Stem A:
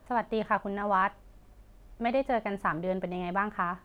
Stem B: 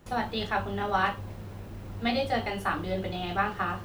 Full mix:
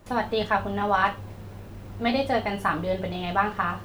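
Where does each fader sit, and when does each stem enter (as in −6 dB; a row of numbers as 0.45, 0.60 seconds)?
+2.0, +0.5 decibels; 0.00, 0.00 seconds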